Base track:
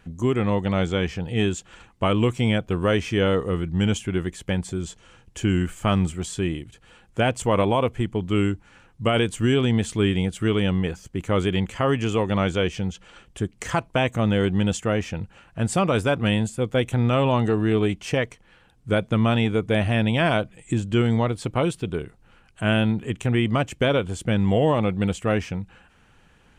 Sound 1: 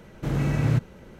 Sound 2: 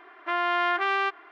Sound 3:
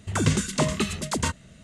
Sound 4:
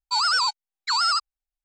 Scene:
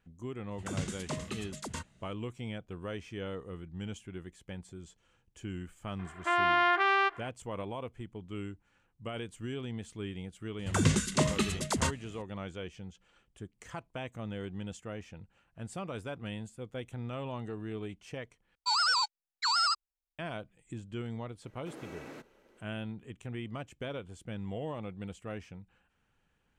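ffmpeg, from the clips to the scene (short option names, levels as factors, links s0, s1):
-filter_complex "[3:a]asplit=2[s0][s1];[0:a]volume=0.119[s2];[4:a]bandreject=f=380:w=9.5[s3];[1:a]highpass=f=280:w=0.5412,highpass=f=280:w=1.3066[s4];[s2]asplit=2[s5][s6];[s5]atrim=end=18.554[s7];[s3]atrim=end=1.64,asetpts=PTS-STARTPTS,volume=0.501[s8];[s6]atrim=start=20.186[s9];[s0]atrim=end=1.63,asetpts=PTS-STARTPTS,volume=0.2,afade=t=in:d=0.004:c=hsin,afade=t=out:st=1.626:d=0.004:c=hsin,adelay=510[s10];[2:a]atrim=end=1.31,asetpts=PTS-STARTPTS,volume=0.891,afade=t=in:d=0.004:c=hsin,afade=t=out:st=1.306:d=0.004:c=hsin,adelay=5990[s11];[s1]atrim=end=1.63,asetpts=PTS-STARTPTS,volume=0.631,afade=t=in:d=0.004:c=hsin,afade=t=out:st=1.626:d=0.004:c=hsin,adelay=10590[s12];[s4]atrim=end=1.19,asetpts=PTS-STARTPTS,volume=0.2,afade=t=in:d=0.004:c=hsin,afade=t=out:st=1.186:d=0.004:c=hsin,adelay=21430[s13];[s7][s8]acrossfade=d=0.004:c1=hsin:c2=hsin[s14];[s14][s9]acrossfade=d=0.004:c1=hsin:c2=hsin[s15];[s15][s10][s11][s12][s13]amix=inputs=5:normalize=0"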